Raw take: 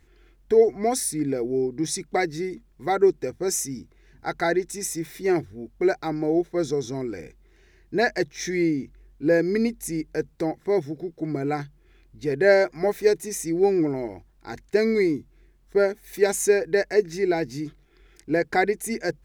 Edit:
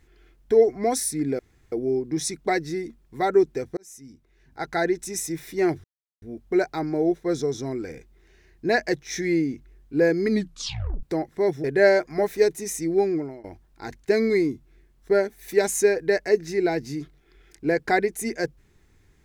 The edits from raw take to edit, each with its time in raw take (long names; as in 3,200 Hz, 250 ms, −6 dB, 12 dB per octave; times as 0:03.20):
0:01.39: splice in room tone 0.33 s
0:03.44–0:04.58: fade in
0:05.51: splice in silence 0.38 s
0:09.59: tape stop 0.73 s
0:10.93–0:12.29: remove
0:13.41–0:14.09: fade out equal-power, to −19.5 dB